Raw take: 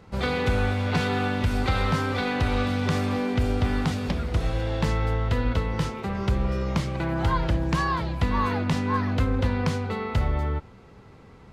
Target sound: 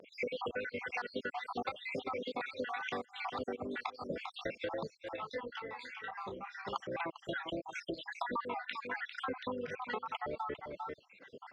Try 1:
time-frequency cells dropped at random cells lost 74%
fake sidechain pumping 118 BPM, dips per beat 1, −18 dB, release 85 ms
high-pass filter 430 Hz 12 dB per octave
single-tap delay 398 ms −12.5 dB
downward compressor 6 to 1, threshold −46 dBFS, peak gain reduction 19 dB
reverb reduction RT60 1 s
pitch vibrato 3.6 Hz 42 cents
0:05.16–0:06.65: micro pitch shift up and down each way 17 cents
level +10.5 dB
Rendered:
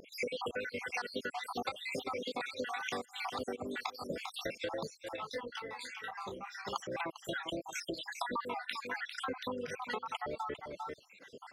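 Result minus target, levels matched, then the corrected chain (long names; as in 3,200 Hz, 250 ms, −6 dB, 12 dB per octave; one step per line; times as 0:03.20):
4,000 Hz band +3.5 dB
time-frequency cells dropped at random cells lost 74%
fake sidechain pumping 118 BPM, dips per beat 1, −18 dB, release 85 ms
high-pass filter 430 Hz 12 dB per octave
single-tap delay 398 ms −12.5 dB
downward compressor 6 to 1, threshold −46 dBFS, peak gain reduction 19 dB
low-pass filter 3,100 Hz 12 dB per octave
reverb reduction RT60 1 s
pitch vibrato 3.6 Hz 42 cents
0:05.16–0:06.65: micro pitch shift up and down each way 17 cents
level +10.5 dB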